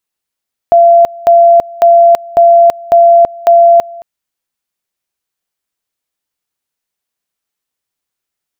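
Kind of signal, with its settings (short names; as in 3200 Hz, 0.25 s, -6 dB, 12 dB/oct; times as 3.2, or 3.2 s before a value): two-level tone 683 Hz -1.5 dBFS, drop 23 dB, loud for 0.33 s, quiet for 0.22 s, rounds 6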